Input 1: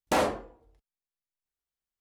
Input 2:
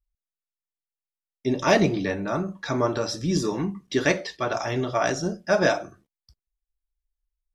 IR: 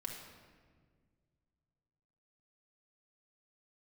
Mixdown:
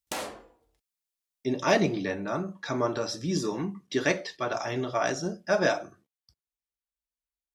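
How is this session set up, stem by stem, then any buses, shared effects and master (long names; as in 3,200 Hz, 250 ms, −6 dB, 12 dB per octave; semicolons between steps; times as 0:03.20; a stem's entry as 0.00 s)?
−6.0 dB, 0.00 s, no send, high-shelf EQ 2,200 Hz +12 dB; downward compressor 2 to 1, threshold −30 dBFS, peak gain reduction 6.5 dB
−3.5 dB, 0.00 s, no send, high-pass filter 73 Hz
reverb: not used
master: low-shelf EQ 92 Hz −7 dB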